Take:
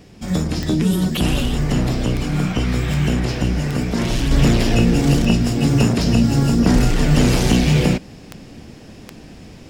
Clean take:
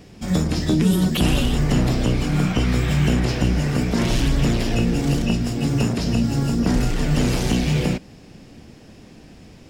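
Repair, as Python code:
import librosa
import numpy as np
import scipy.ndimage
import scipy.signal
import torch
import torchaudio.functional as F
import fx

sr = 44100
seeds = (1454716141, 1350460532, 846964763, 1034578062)

y = fx.fix_declick_ar(x, sr, threshold=10.0)
y = fx.gain(y, sr, db=fx.steps((0.0, 0.0), (4.31, -5.0)))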